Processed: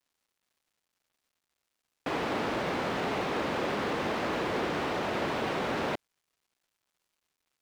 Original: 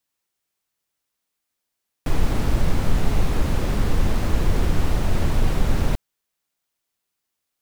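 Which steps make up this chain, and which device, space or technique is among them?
phone line with mismatched companding (band-pass filter 360–3,500 Hz; mu-law and A-law mismatch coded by mu)

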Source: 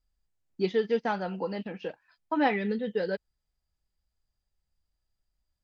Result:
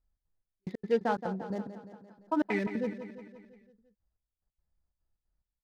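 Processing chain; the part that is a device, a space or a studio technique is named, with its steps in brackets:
adaptive Wiener filter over 15 samples
trance gate with a delay (gate pattern "xx.xx...x.xxxx." 180 BPM −60 dB; repeating echo 172 ms, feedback 57%, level −11 dB)
0:00.98–0:02.47: parametric band 2,200 Hz −5.5 dB 0.87 octaves

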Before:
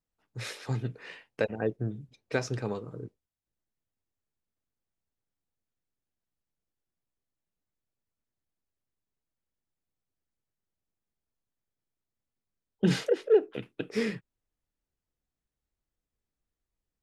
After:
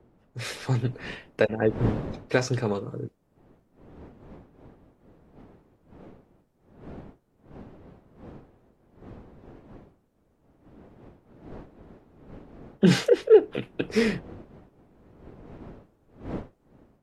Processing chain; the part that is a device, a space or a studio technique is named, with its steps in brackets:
smartphone video outdoors (wind on the microphone 360 Hz −50 dBFS; automatic gain control gain up to 6.5 dB; AAC 48 kbit/s 44,100 Hz)

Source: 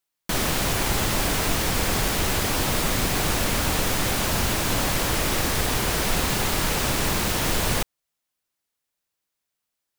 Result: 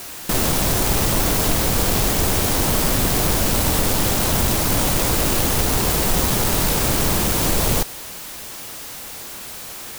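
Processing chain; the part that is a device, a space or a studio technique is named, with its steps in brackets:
early CD player with a faulty converter (converter with a step at zero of −29 dBFS; converter with an unsteady clock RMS 0.15 ms)
level +3.5 dB

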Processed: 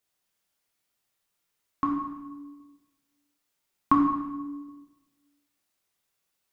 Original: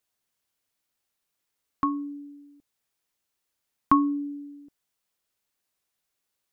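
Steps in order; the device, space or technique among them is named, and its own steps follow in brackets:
bathroom (convolution reverb RT60 1.2 s, pre-delay 8 ms, DRR −1.5 dB)
level −1.5 dB

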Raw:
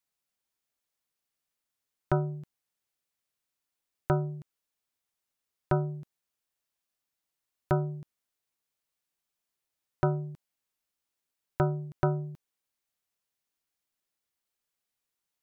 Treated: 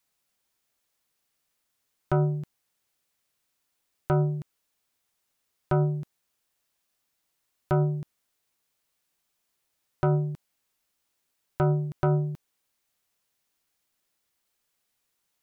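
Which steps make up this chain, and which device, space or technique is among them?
soft clipper into limiter (soft clipping −14 dBFS, distortion −22 dB; brickwall limiter −23.5 dBFS, peak gain reduction 7.5 dB)
level +8.5 dB

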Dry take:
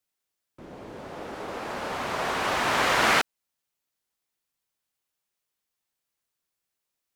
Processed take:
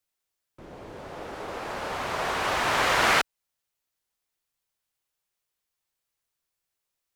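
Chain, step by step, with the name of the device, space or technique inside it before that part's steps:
low shelf boost with a cut just above (low-shelf EQ 64 Hz +6 dB; parametric band 230 Hz −4.5 dB 0.88 octaves)

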